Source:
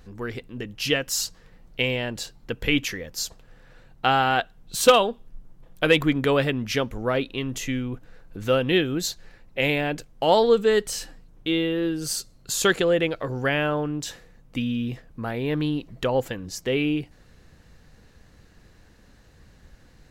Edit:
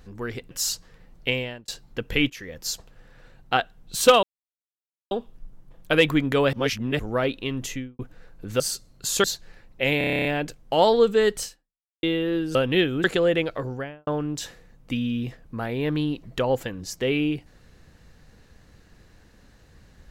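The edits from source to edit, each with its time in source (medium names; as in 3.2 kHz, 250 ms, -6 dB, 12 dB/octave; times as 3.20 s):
0.51–1.03 s: delete
1.81–2.20 s: fade out
2.82–3.10 s: fade in, from -19.5 dB
4.09–4.37 s: delete
5.03 s: insert silence 0.88 s
6.45–6.91 s: reverse
7.57–7.91 s: studio fade out
8.52–9.01 s: swap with 12.05–12.69 s
9.75 s: stutter 0.03 s, 10 plays
10.93–11.53 s: fade out exponential
13.19–13.72 s: studio fade out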